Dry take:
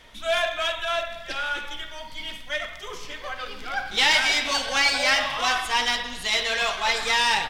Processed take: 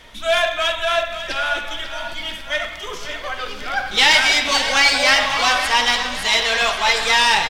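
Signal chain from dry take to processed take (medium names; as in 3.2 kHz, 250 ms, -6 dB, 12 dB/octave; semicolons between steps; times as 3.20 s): feedback delay 544 ms, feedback 51%, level -11 dB; trim +6 dB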